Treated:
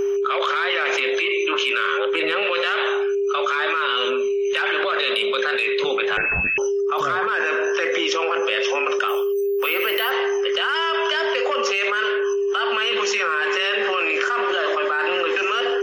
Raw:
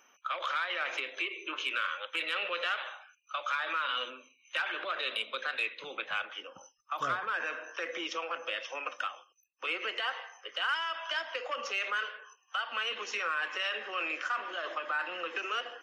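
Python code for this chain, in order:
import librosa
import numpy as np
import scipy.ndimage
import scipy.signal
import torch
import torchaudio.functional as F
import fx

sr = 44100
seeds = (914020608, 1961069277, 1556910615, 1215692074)

y = fx.tilt_eq(x, sr, slope=-3.5, at=(1.98, 2.43))
y = y + 10.0 ** (-38.0 / 20.0) * np.sin(2.0 * np.pi * 400.0 * np.arange(len(y)) / sr)
y = fx.freq_invert(y, sr, carrier_hz=3000, at=(6.17, 6.58))
y = fx.resample_bad(y, sr, factor=3, down='filtered', up='hold', at=(9.08, 10.11))
y = fx.env_flatten(y, sr, amount_pct=100)
y = y * librosa.db_to_amplitude(7.0)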